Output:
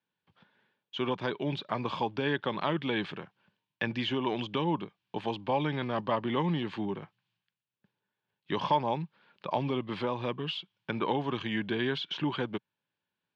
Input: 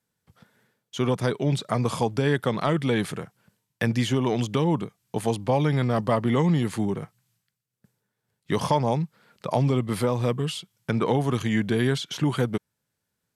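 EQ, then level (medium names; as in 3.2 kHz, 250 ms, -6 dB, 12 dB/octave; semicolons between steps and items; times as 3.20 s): cabinet simulation 120–3200 Hz, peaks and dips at 130 Hz -5 dB, 230 Hz -4 dB, 470 Hz -8 dB, 690 Hz -8 dB, 1.3 kHz -9 dB, 2 kHz -9 dB; bass shelf 360 Hz -11.5 dB; +3.0 dB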